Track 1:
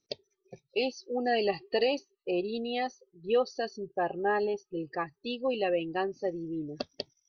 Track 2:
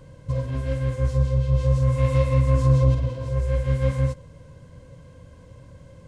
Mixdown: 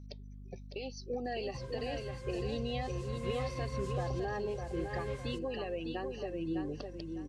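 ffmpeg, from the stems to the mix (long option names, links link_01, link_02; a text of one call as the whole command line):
ffmpeg -i stem1.wav -i stem2.wav -filter_complex "[0:a]acompressor=threshold=-32dB:ratio=6,alimiter=level_in=5.5dB:limit=-24dB:level=0:latency=1:release=258,volume=-5.5dB,volume=0dB,asplit=2[link_01][link_02];[link_02]volume=-5.5dB[link_03];[1:a]lowshelf=frequency=480:gain=-11.5,adelay=1250,volume=-10dB[link_04];[link_03]aecho=0:1:605|1210|1815|2420:1|0.29|0.0841|0.0244[link_05];[link_01][link_04][link_05]amix=inputs=3:normalize=0,aeval=exprs='val(0)+0.00447*(sin(2*PI*50*n/s)+sin(2*PI*2*50*n/s)/2+sin(2*PI*3*50*n/s)/3+sin(2*PI*4*50*n/s)/4+sin(2*PI*5*50*n/s)/5)':channel_layout=same" out.wav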